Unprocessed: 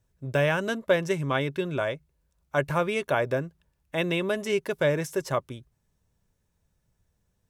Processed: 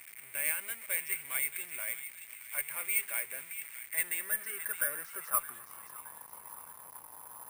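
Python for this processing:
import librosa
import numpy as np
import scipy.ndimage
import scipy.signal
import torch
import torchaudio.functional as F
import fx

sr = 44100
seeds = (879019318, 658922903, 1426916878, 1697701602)

p1 = x + 0.5 * 10.0 ** (-27.5 / 20.0) * np.sign(x)
p2 = fx.filter_sweep_bandpass(p1, sr, from_hz=2200.0, to_hz=1000.0, start_s=3.7, end_s=6.06, q=6.6)
p3 = p2 + fx.echo_wet_highpass(p2, sr, ms=618, feedback_pct=44, hz=2600.0, wet_db=-7.0, dry=0)
p4 = (np.kron(p3[::4], np.eye(4)[0]) * 4)[:len(p3)]
y = fx.tube_stage(p4, sr, drive_db=5.0, bias=0.4)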